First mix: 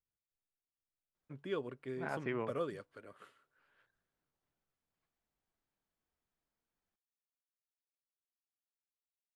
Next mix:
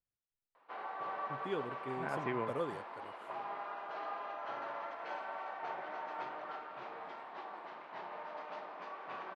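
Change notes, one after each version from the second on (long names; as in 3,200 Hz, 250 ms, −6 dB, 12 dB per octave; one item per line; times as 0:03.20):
background: unmuted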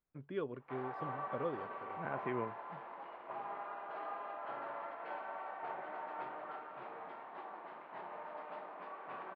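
first voice: entry −1.15 s
master: add high-frequency loss of the air 370 metres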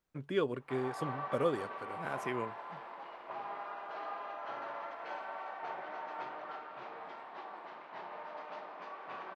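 first voice +6.5 dB
second voice: remove low-pass filter 2,700 Hz 12 dB per octave
master: remove high-frequency loss of the air 370 metres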